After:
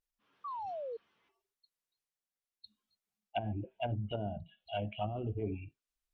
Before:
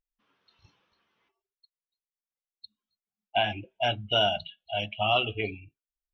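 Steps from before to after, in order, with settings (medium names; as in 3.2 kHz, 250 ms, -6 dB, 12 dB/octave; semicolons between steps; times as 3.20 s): transient shaper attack -7 dB, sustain +4 dB; painted sound fall, 0.44–0.97 s, 440–1200 Hz -39 dBFS; low-pass that closes with the level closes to 300 Hz, closed at -26 dBFS; trim -1 dB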